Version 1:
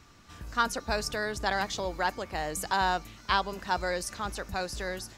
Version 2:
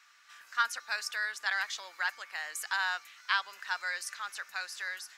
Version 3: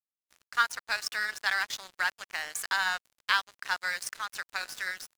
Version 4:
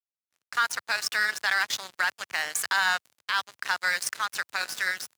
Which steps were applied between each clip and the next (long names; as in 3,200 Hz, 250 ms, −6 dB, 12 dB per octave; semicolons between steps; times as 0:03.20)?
high-pass with resonance 1,600 Hz, resonance Q 1.9; level −3.5 dB
hum removal 187.5 Hz, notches 9; in parallel at +2 dB: downward compressor 10 to 1, threshold −41 dBFS, peak gain reduction 18.5 dB; on the sum: dead-zone distortion −39 dBFS; level +3 dB
high-pass filter 91 Hz 24 dB per octave; downward expander −57 dBFS; brickwall limiter −20 dBFS, peak gain reduction 11 dB; level +6.5 dB